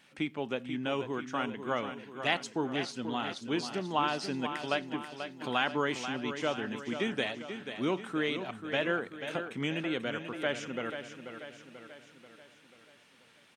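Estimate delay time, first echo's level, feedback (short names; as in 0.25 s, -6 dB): 0.487 s, -9.0 dB, 53%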